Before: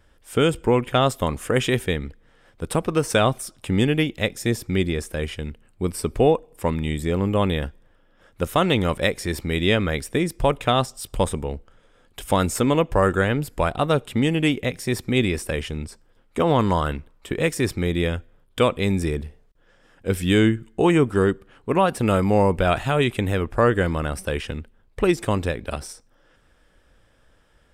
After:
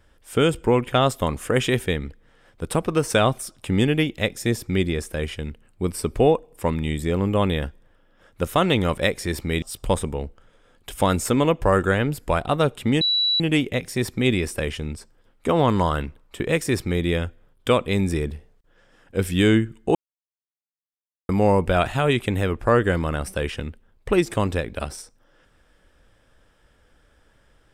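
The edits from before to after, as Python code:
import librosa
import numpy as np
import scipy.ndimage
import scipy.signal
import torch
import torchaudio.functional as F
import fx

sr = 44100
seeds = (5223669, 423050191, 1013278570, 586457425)

y = fx.edit(x, sr, fx.cut(start_s=9.62, length_s=1.3),
    fx.insert_tone(at_s=14.31, length_s=0.39, hz=3930.0, db=-17.5),
    fx.silence(start_s=20.86, length_s=1.34), tone=tone)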